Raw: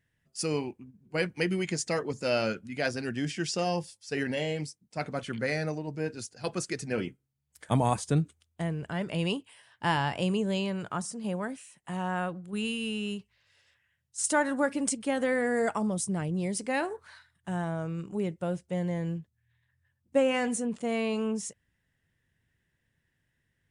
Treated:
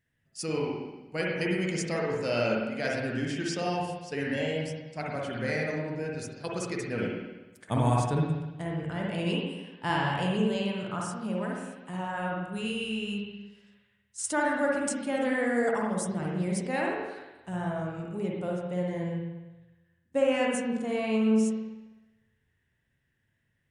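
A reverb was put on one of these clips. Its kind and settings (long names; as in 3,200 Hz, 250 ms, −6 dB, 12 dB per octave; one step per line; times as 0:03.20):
spring reverb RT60 1.1 s, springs 50/59 ms, chirp 65 ms, DRR −2.5 dB
level −3.5 dB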